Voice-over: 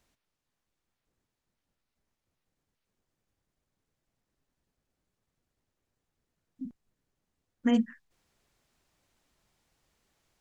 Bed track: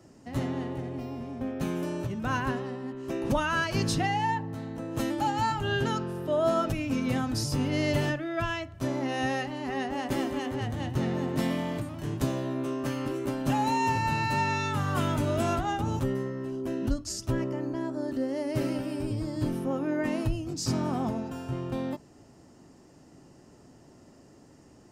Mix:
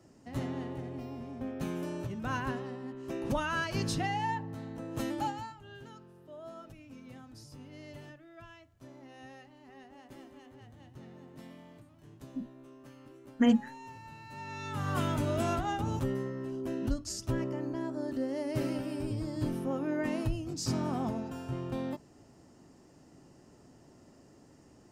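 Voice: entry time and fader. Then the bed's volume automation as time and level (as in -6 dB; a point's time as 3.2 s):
5.75 s, +1.0 dB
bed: 5.25 s -5 dB
5.56 s -21.5 dB
14.24 s -21.5 dB
14.89 s -3.5 dB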